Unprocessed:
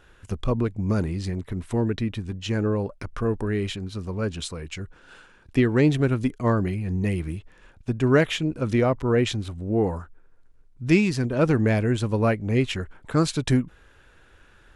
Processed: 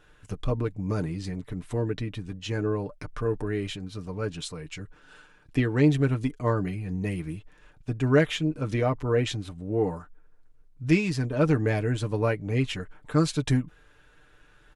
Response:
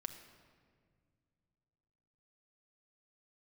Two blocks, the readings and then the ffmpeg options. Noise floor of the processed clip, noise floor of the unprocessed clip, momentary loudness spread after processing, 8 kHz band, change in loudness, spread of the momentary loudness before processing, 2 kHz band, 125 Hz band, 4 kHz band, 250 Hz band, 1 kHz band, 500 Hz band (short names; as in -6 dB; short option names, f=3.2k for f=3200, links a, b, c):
-58 dBFS, -55 dBFS, 14 LU, -3.0 dB, -3.0 dB, 13 LU, -3.0 dB, -2.5 dB, -3.0 dB, -4.0 dB, -3.5 dB, -3.0 dB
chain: -af "aecho=1:1:6.7:0.57,volume=-4.5dB"